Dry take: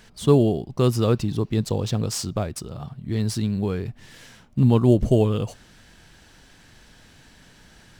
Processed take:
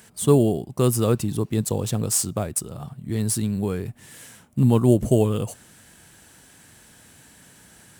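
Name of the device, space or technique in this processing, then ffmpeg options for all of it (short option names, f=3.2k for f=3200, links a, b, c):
budget condenser microphone: -af "highpass=82,highshelf=f=6.7k:t=q:w=1.5:g=10.5"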